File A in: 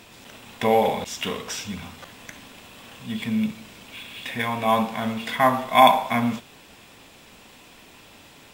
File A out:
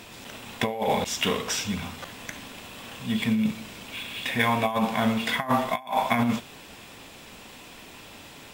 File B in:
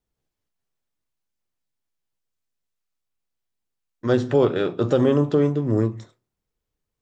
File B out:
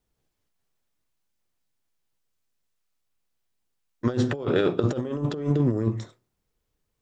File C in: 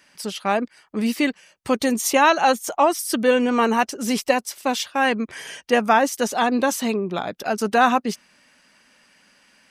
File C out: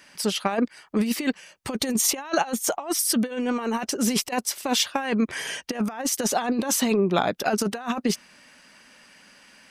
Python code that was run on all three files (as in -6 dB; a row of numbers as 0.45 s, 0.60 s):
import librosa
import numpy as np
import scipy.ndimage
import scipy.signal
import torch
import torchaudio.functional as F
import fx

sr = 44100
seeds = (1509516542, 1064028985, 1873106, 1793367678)

y = fx.over_compress(x, sr, threshold_db=-23.0, ratio=-0.5)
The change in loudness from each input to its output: -4.0 LU, -5.0 LU, -4.0 LU